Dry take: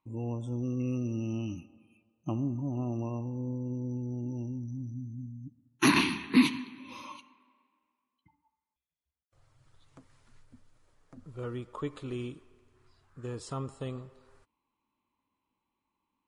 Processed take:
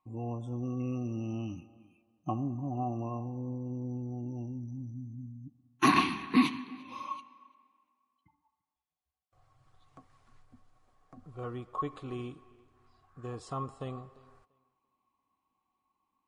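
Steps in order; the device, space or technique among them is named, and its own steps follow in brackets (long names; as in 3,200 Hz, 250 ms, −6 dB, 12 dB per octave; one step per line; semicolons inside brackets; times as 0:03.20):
tape delay 343 ms, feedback 22%, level −23 dB, low-pass 5,400 Hz
inside a helmet (high-shelf EQ 5,800 Hz −6 dB; hollow resonant body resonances 750/1,100 Hz, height 18 dB, ringing for 90 ms)
level −2.5 dB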